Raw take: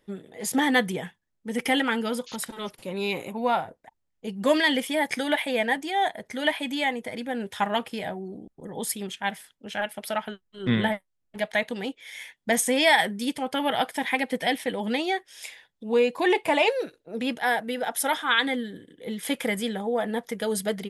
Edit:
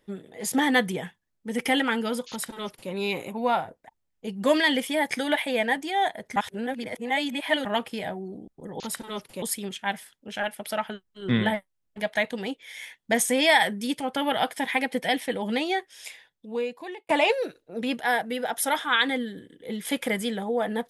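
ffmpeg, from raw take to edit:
-filter_complex "[0:a]asplit=6[a][b][c][d][e][f];[a]atrim=end=6.362[g];[b]atrim=start=6.358:end=7.652,asetpts=PTS-STARTPTS,areverse[h];[c]atrim=start=7.648:end=8.802[i];[d]atrim=start=2.288:end=2.912[j];[e]atrim=start=8.798:end=16.47,asetpts=PTS-STARTPTS,afade=t=out:st=6.512:d=1.16[k];[f]atrim=start=16.47,asetpts=PTS-STARTPTS,afade=t=in:d=0.004:c=hsin[l];[g][h]acrossfade=d=0.004:c1=hsin:c2=hsin[m];[m][i]acrossfade=d=0.004:c1=hsin:c2=hsin[n];[n][j]acrossfade=d=0.004:c1=hsin:c2=hsin[o];[k][l]concat=n=2:v=0:a=1[p];[o][p]acrossfade=d=0.004:c1=hsin:c2=hsin"

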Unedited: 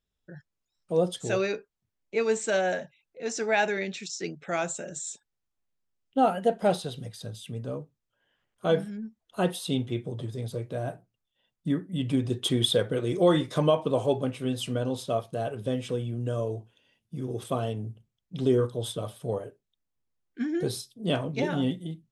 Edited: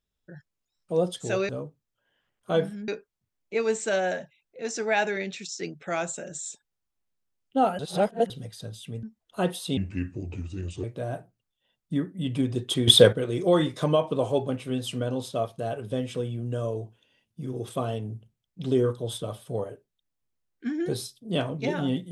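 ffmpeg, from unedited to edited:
-filter_complex "[0:a]asplit=10[a][b][c][d][e][f][g][h][i][j];[a]atrim=end=1.492[k];[b]atrim=start=7.638:end=9.032[l];[c]atrim=start=1.488:end=6.402[m];[d]atrim=start=6.398:end=6.912,asetpts=PTS-STARTPTS,areverse[n];[e]atrim=start=6.908:end=7.642[o];[f]atrim=start=9.028:end=9.774[p];[g]atrim=start=9.77:end=10.58,asetpts=PTS-STARTPTS,asetrate=33516,aresample=44100,atrim=end_sample=47001,asetpts=PTS-STARTPTS[q];[h]atrim=start=10.576:end=12.622[r];[i]atrim=start=12.618:end=12.872,asetpts=PTS-STARTPTS,volume=9.5dB[s];[j]atrim=start=12.868[t];[k][l]acrossfade=d=0.004:c1=hsin:c2=hsin[u];[u][m]acrossfade=d=0.004:c1=hsin:c2=hsin[v];[v][n]acrossfade=d=0.004:c1=hsin:c2=hsin[w];[w][o]acrossfade=d=0.004:c1=hsin:c2=hsin[x];[x][p]acrossfade=d=0.004:c1=hsin:c2=hsin[y];[y][q]acrossfade=d=0.004:c1=hsin:c2=hsin[z];[z][r]acrossfade=d=0.004:c1=hsin:c2=hsin[aa];[aa][s]acrossfade=d=0.004:c1=hsin:c2=hsin[ab];[ab][t]acrossfade=d=0.004:c1=hsin:c2=hsin"

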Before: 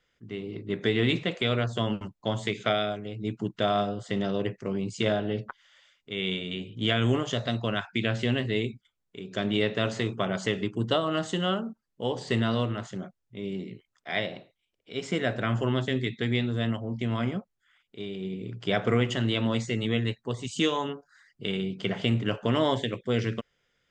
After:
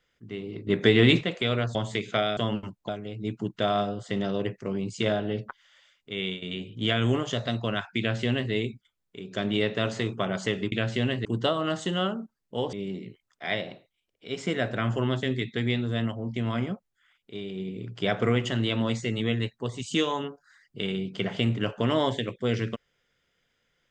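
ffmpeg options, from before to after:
-filter_complex "[0:a]asplit=10[a][b][c][d][e][f][g][h][i][j];[a]atrim=end=0.672[k];[b]atrim=start=0.668:end=1.212,asetpts=PTS-STARTPTS,volume=6dB[l];[c]atrim=start=1.208:end=1.752[m];[d]atrim=start=2.268:end=2.892[n];[e]atrim=start=1.748:end=2.272[o];[f]atrim=start=2.888:end=6.42,asetpts=PTS-STARTPTS,afade=t=out:st=3.282:d=0.25:c=qsin:silence=0.266073[p];[g]atrim=start=6.42:end=10.722,asetpts=PTS-STARTPTS,afade=t=in:d=0.004:c=hsin:silence=0.266073[q];[h]atrim=start=7.988:end=8.522[r];[i]atrim=start=10.718:end=12.202[s];[j]atrim=start=13.378[t];[k][l]acrossfade=d=0.004:c1=hsin:c2=hsin[u];[u][m]acrossfade=d=0.004:c1=hsin:c2=hsin[v];[v][n]acrossfade=d=0.004:c1=hsin:c2=hsin[w];[w][o]acrossfade=d=0.004:c1=hsin:c2=hsin[x];[p][q]concat=n=2:v=0:a=1[y];[x][y]acrossfade=d=0.004:c1=hsin:c2=hsin[z];[z][r]acrossfade=d=0.004:c1=hsin:c2=hsin[aa];[aa][s]acrossfade=d=0.004:c1=hsin:c2=hsin[ab];[ab][t]acrossfade=d=0.004:c1=hsin:c2=hsin"

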